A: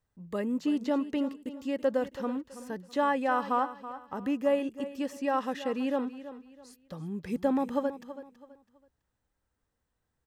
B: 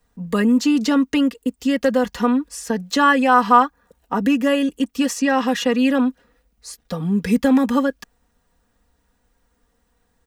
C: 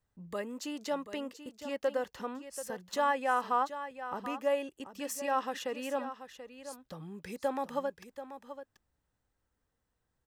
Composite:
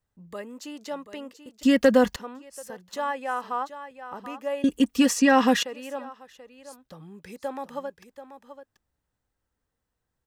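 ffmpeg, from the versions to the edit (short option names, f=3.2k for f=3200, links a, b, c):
-filter_complex "[1:a]asplit=2[a][b];[2:a]asplit=3[c][d][e];[c]atrim=end=1.632[f];[a]atrim=start=1.628:end=2.162[g];[d]atrim=start=2.158:end=4.642[h];[b]atrim=start=4.638:end=5.632[i];[e]atrim=start=5.628[j];[f][g]acrossfade=d=0.004:c1=hsin:c2=hsin[k];[k][h]acrossfade=d=0.004:c1=hsin:c2=hsin[l];[l][i]acrossfade=d=0.004:c1=hsin:c2=hsin[m];[m][j]acrossfade=d=0.004:c1=hsin:c2=hsin"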